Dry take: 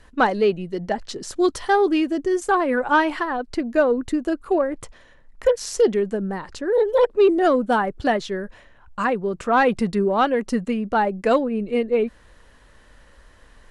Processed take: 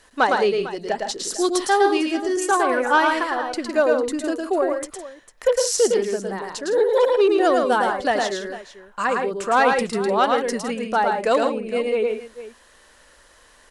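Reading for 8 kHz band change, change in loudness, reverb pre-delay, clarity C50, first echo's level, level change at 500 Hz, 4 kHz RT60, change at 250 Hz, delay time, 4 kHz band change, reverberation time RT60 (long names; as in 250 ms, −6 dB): +9.0 dB, +0.5 dB, no reverb audible, no reverb audible, −3.5 dB, +0.5 dB, no reverb audible, −3.0 dB, 109 ms, +5.5 dB, no reverb audible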